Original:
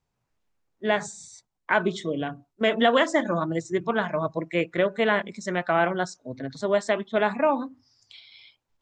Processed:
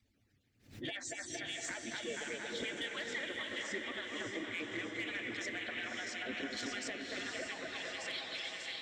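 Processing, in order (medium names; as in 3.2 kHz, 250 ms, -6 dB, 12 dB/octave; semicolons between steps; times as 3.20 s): harmonic-percussive separation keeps percussive; peaking EQ 110 Hz +12.5 dB 0.92 oct; on a send: two-band feedback delay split 2.2 kHz, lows 228 ms, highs 594 ms, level -7 dB; on the sum: hard clipper -13.5 dBFS, distortion -22 dB; compression 16:1, threshold -42 dBFS, peak gain reduction 24 dB; graphic EQ 250/1000/2000/4000 Hz +11/-12/+8/+6 dB; saturation -30.5 dBFS, distortion -20 dB; peak limiter -35 dBFS, peak gain reduction 4 dB; echo that smears into a reverb 566 ms, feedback 48%, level -4 dB; swell ahead of each attack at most 130 dB/s; trim +3 dB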